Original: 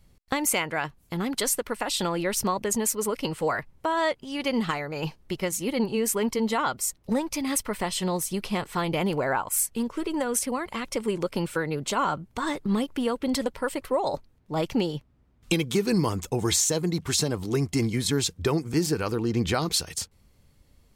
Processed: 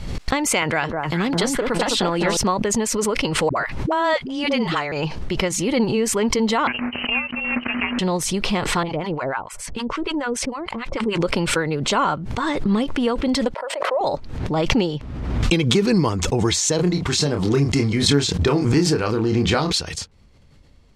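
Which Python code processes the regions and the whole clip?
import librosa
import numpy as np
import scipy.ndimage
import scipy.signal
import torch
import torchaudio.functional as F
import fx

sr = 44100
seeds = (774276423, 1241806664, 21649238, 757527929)

y = fx.chain(x, sr, fx.echo_alternate(ms=206, hz=1300.0, feedback_pct=57, wet_db=-2.5),
    fx.band_squash(depth_pct=40), at=(0.62, 2.37))
y = fx.chain(y, sr, fx.low_shelf(hz=170.0, db=-6.5),
    fx.dispersion(late='highs', ms=72.0, hz=390.0), at=(3.49, 4.92))
y = fx.chain(y, sr, fx.sample_sort(block=16),
    fx.highpass(hz=320.0, slope=6),
    fx.freq_invert(carrier_hz=3000), at=(6.67, 7.99))
y = fx.chain(y, sr, fx.lowpass(hz=2800.0, slope=6),
    fx.harmonic_tremolo(hz=6.7, depth_pct=100, crossover_hz=870.0), at=(8.83, 11.21))
y = fx.chain(y, sr, fx.ladder_highpass(hz=550.0, resonance_pct=65),
    fx.high_shelf(hz=3000.0, db=-10.5),
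    fx.sustainer(db_per_s=110.0), at=(13.54, 14.01))
y = fx.chain(y, sr, fx.law_mismatch(coded='A'),
    fx.doubler(ms=28.0, db=-6), at=(16.76, 19.72))
y = scipy.signal.sosfilt(scipy.signal.butter(2, 5700.0, 'lowpass', fs=sr, output='sos'), y)
y = fx.pre_swell(y, sr, db_per_s=38.0)
y = F.gain(torch.from_numpy(y), 5.5).numpy()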